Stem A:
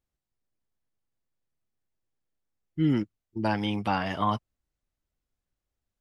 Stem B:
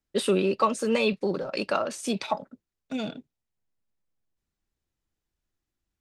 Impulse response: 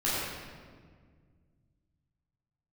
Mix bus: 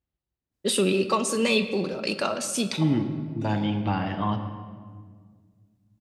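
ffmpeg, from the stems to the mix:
-filter_complex "[0:a]lowpass=f=4.1k:w=0.5412,lowpass=f=4.1k:w=1.3066,volume=1dB,asplit=3[a][b][c];[b]volume=-15.5dB[d];[1:a]adynamicequalizer=threshold=0.00891:dfrequency=1600:dqfactor=0.7:tfrequency=1600:tqfactor=0.7:attack=5:release=100:ratio=0.375:range=4:mode=boostabove:tftype=highshelf,adelay=500,volume=1.5dB,asplit=2[e][f];[f]volume=-19.5dB[g];[c]apad=whole_len=286929[h];[e][h]sidechaincompress=threshold=-32dB:ratio=8:attack=10:release=390[i];[2:a]atrim=start_sample=2205[j];[d][g]amix=inputs=2:normalize=0[k];[k][j]afir=irnorm=-1:irlink=0[l];[a][i][l]amix=inputs=3:normalize=0,highpass=44,equalizer=f=1.6k:w=0.35:g=-6"

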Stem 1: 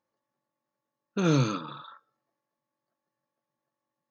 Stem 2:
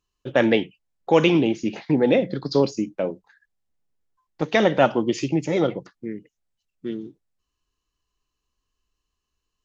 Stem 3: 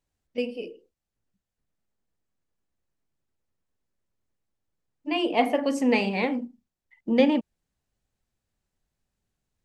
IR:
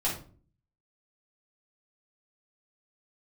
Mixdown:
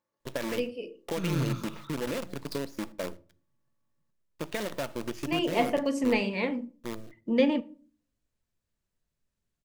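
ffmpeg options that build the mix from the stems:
-filter_complex "[0:a]asubboost=boost=9:cutoff=170,volume=-1.5dB,asplit=2[a][b];[b]volume=-14.5dB[c];[1:a]acompressor=threshold=-22dB:ratio=8,acrusher=bits=5:dc=4:mix=0:aa=0.000001,volume=-8.5dB,asplit=3[d][e][f];[e]volume=-22dB[g];[2:a]adelay=200,volume=-4dB,asplit=2[h][i];[i]volume=-21.5dB[j];[f]apad=whole_len=181028[k];[a][k]sidechaincompress=threshold=-40dB:ratio=8:attack=16:release=365[l];[3:a]atrim=start_sample=2205[m];[g][j]amix=inputs=2:normalize=0[n];[n][m]afir=irnorm=-1:irlink=0[o];[c]aecho=0:1:115:1[p];[l][d][h][o][p]amix=inputs=5:normalize=0,asuperstop=centerf=770:order=4:qfactor=6.8"

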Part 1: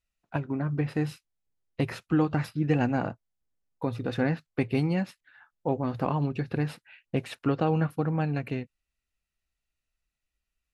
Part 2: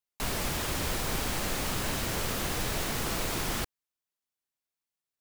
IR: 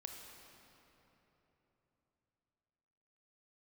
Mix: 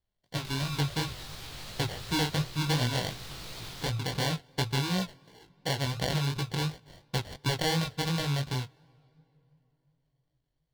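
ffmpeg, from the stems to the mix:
-filter_complex "[0:a]acrusher=samples=35:mix=1:aa=0.000001,volume=2.5dB,asplit=2[a][b];[b]volume=-21.5dB[c];[1:a]acrossover=split=450|3400[d][e][f];[d]acompressor=threshold=-41dB:ratio=4[g];[e]acompressor=threshold=-48dB:ratio=4[h];[f]acompressor=threshold=-50dB:ratio=4[i];[g][h][i]amix=inputs=3:normalize=0,alimiter=level_in=9.5dB:limit=-24dB:level=0:latency=1:release=135,volume=-9.5dB,adelay=250,volume=2.5dB[j];[2:a]atrim=start_sample=2205[k];[c][k]afir=irnorm=-1:irlink=0[l];[a][j][l]amix=inputs=3:normalize=0,equalizer=f=125:t=o:w=1:g=6,equalizer=f=250:t=o:w=1:g=-8,equalizer=f=4k:t=o:w=1:g=11,flanger=delay=16:depth=7:speed=2.8,acompressor=threshold=-31dB:ratio=1.5"

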